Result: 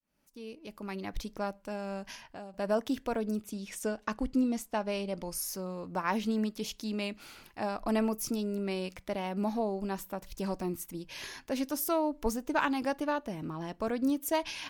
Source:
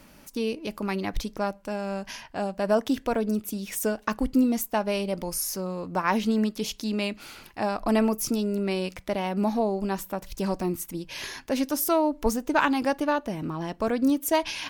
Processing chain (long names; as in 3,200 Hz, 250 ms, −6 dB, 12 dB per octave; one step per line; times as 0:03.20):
fade in at the beginning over 1.36 s
0:02.14–0:02.54: downward compressor 3 to 1, threshold −38 dBFS, peak gain reduction 10 dB
0:03.44–0:05.35: low-pass filter 8,800 Hz 12 dB per octave
level −6.5 dB